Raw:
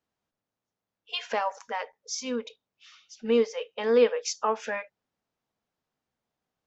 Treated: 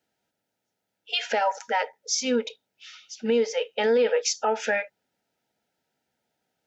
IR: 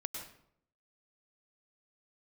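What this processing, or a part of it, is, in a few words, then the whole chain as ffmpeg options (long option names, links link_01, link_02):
PA system with an anti-feedback notch: -af "highpass=frequency=180:poles=1,asuperstop=centerf=1100:order=20:qfactor=4,alimiter=limit=-22.5dB:level=0:latency=1:release=67,volume=8dB"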